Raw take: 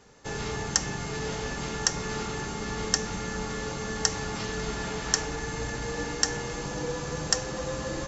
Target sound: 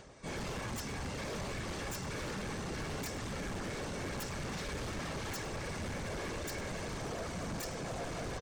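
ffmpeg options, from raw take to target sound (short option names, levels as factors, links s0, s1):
-filter_complex "[0:a]lowpass=f=6500:w=0.5412,lowpass=f=6500:w=1.3066,lowshelf=f=120:g=6.5,asplit=2[s0][s1];[s1]alimiter=limit=0.15:level=0:latency=1:release=210,volume=1.19[s2];[s0][s2]amix=inputs=2:normalize=0,acompressor=mode=upward:threshold=0.00891:ratio=2.5,asplit=2[s3][s4];[s4]asetrate=58866,aresample=44100,atempo=0.749154,volume=0.891[s5];[s3][s5]amix=inputs=2:normalize=0,aeval=exprs='0.15*(abs(mod(val(0)/0.15+3,4)-2)-1)':c=same,afftfilt=real='hypot(re,im)*cos(2*PI*random(0))':imag='hypot(re,im)*sin(2*PI*random(1))':win_size=512:overlap=0.75,asoftclip=type=tanh:threshold=0.0376,asplit=2[s6][s7];[s7]aecho=0:1:102:0.0794[s8];[s6][s8]amix=inputs=2:normalize=0,asetrate=42336,aresample=44100,volume=0.473"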